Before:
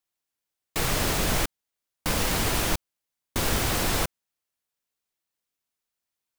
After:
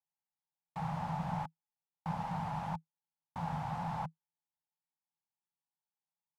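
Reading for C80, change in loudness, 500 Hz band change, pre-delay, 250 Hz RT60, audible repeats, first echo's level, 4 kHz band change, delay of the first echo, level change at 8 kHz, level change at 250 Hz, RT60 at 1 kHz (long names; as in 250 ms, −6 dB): no reverb audible, −13.0 dB, −18.0 dB, no reverb audible, no reverb audible, no echo audible, no echo audible, −28.0 dB, no echo audible, below −30 dB, −9.0 dB, no reverb audible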